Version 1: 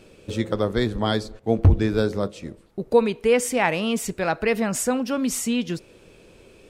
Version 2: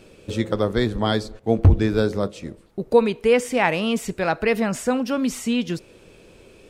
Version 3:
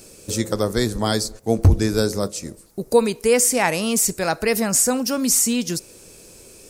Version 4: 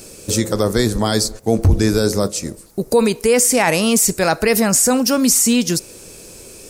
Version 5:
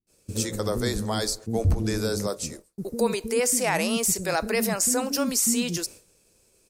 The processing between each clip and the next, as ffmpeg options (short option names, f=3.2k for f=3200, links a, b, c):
-filter_complex "[0:a]acrossover=split=4300[a][b];[b]acompressor=threshold=-35dB:ratio=4:attack=1:release=60[c];[a][c]amix=inputs=2:normalize=0,volume=1.5dB"
-af "aexciter=amount=8.1:drive=3.6:freq=4.7k"
-af "alimiter=limit=-11.5dB:level=0:latency=1:release=21,volume=6.5dB"
-filter_complex "[0:a]acrossover=split=300[a][b];[b]adelay=70[c];[a][c]amix=inputs=2:normalize=0,agate=range=-33dB:threshold=-28dB:ratio=3:detection=peak,volume=-8.5dB"